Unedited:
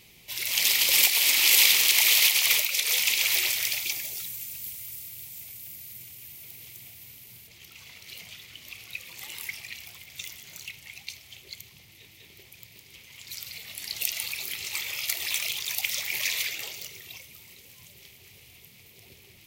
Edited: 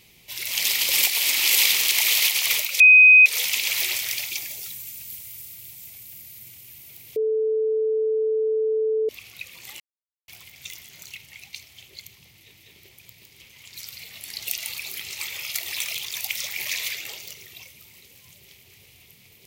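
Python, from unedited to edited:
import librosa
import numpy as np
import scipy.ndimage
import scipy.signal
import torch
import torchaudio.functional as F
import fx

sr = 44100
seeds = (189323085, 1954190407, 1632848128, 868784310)

y = fx.edit(x, sr, fx.insert_tone(at_s=2.8, length_s=0.46, hz=2510.0, db=-7.5),
    fx.bleep(start_s=6.7, length_s=1.93, hz=438.0, db=-19.5),
    fx.silence(start_s=9.34, length_s=0.48), tone=tone)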